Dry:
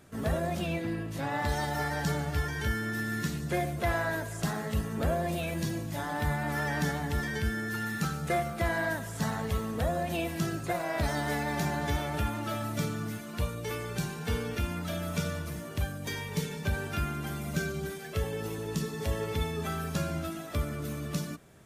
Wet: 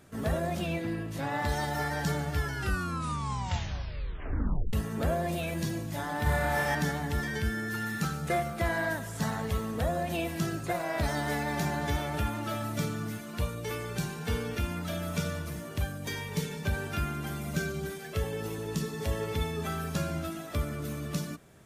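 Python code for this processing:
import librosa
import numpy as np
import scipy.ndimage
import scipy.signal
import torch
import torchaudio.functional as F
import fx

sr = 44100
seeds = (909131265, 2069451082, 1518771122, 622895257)

y = fx.room_flutter(x, sr, wall_m=5.0, rt60_s=0.92, at=(6.23, 6.75))
y = fx.edit(y, sr, fx.tape_stop(start_s=2.38, length_s=2.35), tone=tone)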